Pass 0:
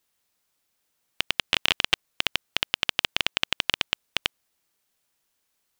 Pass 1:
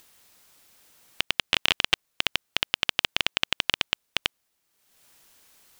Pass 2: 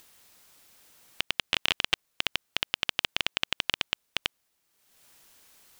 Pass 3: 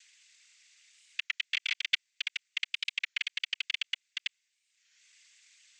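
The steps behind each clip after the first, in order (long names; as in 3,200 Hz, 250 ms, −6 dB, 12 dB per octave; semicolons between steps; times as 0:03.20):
upward compression, threshold −43 dBFS
brickwall limiter −5 dBFS, peak gain reduction 3.5 dB
cochlear-implant simulation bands 16; four-pole ladder high-pass 1,800 Hz, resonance 50%; wow of a warped record 33 1/3 rpm, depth 160 cents; level +2 dB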